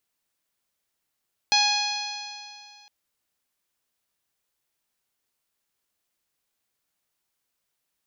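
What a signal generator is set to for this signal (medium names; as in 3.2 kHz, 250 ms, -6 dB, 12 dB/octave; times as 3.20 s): stretched partials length 1.36 s, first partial 827 Hz, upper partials -8/-1/-4/2.5/-3.5/-4.5/-17 dB, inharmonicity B 0.0011, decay 2.35 s, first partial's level -22.5 dB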